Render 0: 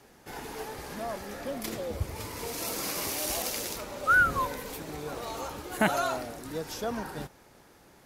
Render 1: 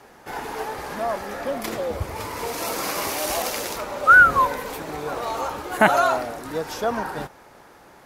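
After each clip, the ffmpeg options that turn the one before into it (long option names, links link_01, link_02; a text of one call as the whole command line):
ffmpeg -i in.wav -af "equalizer=frequency=1000:width_type=o:width=2.6:gain=9,volume=2.5dB" out.wav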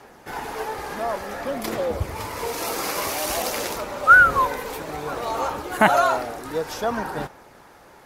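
ffmpeg -i in.wav -af "aphaser=in_gain=1:out_gain=1:delay=2.5:decay=0.22:speed=0.55:type=sinusoidal" out.wav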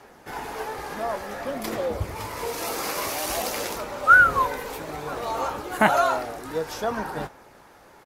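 ffmpeg -i in.wav -filter_complex "[0:a]asplit=2[link_01][link_02];[link_02]adelay=19,volume=-11.5dB[link_03];[link_01][link_03]amix=inputs=2:normalize=0,volume=-2.5dB" out.wav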